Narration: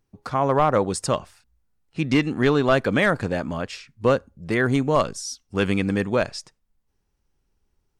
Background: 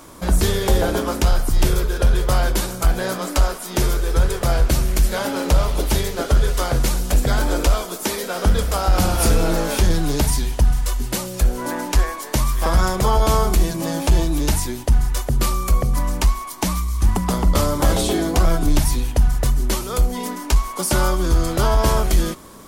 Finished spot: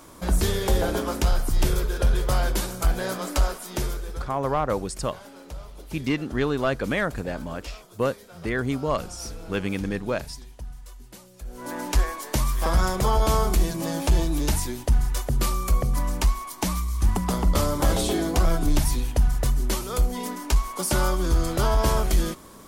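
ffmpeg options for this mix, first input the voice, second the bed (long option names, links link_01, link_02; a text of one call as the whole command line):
ffmpeg -i stem1.wav -i stem2.wav -filter_complex "[0:a]adelay=3950,volume=-5.5dB[link_01];[1:a]volume=12.5dB,afade=type=out:start_time=3.49:duration=0.83:silence=0.141254,afade=type=in:start_time=11.45:duration=0.43:silence=0.133352[link_02];[link_01][link_02]amix=inputs=2:normalize=0" out.wav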